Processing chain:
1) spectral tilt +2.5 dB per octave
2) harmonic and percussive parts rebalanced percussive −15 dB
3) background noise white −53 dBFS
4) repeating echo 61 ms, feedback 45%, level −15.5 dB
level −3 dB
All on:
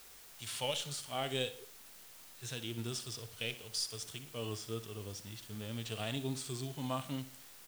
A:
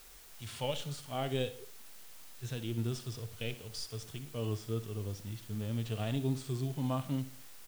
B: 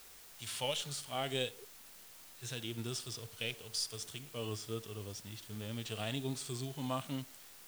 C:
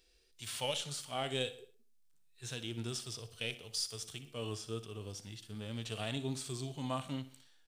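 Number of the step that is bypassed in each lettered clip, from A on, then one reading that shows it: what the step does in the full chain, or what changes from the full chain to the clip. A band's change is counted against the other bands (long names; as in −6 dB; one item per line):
1, 125 Hz band +8.5 dB
4, echo-to-direct ratio −14.5 dB to none audible
3, change in momentary loudness spread −3 LU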